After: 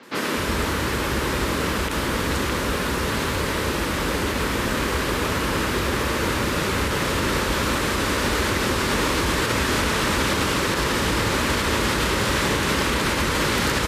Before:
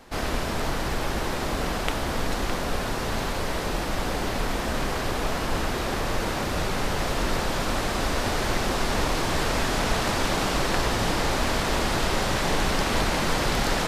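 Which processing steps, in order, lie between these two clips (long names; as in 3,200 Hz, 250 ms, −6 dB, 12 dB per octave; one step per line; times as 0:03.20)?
high-pass filter 53 Hz 24 dB per octave
parametric band 720 Hz −13 dB 0.43 octaves
three-band delay without the direct sound mids, highs, lows 30/250 ms, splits 150/5,100 Hz
brickwall limiter −19 dBFS, peak gain reduction 10.5 dB
level +7 dB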